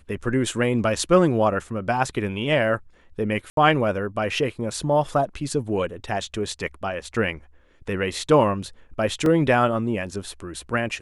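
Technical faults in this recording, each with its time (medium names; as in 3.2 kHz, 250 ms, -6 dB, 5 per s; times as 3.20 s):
3.50–3.57 s: dropout 72 ms
9.26 s: dropout 2 ms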